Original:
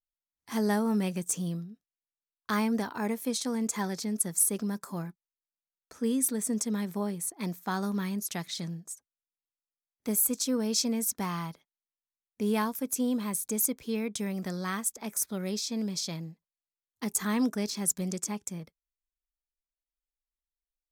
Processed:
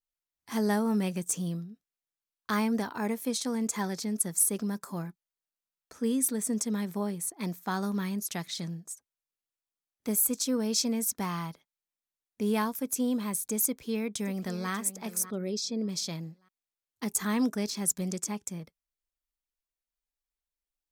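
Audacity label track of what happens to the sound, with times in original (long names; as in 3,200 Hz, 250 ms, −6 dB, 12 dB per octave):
13.660000	14.710000	delay throw 590 ms, feedback 30%, level −13.5 dB
15.220000	15.890000	spectral envelope exaggerated exponent 1.5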